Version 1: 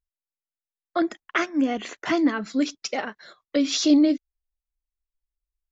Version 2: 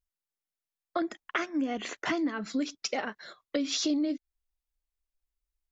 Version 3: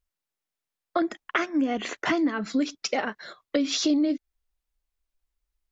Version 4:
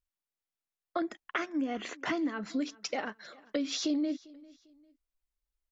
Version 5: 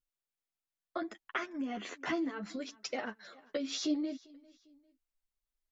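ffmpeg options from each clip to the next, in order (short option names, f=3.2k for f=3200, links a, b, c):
-af "acompressor=threshold=-28dB:ratio=4"
-af "highshelf=f=4.7k:g=-4.5,volume=5.5dB"
-af "aecho=1:1:398|796:0.0708|0.0241,volume=-7.5dB"
-af "flanger=delay=7.7:depth=4.3:regen=4:speed=0.7:shape=sinusoidal"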